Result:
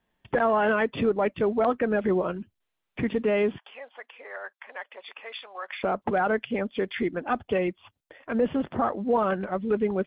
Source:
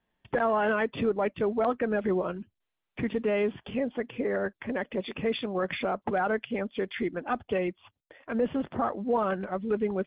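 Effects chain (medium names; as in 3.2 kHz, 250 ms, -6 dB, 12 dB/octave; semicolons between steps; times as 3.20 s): 3.58–5.84 s: ladder high-pass 670 Hz, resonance 25%; trim +3 dB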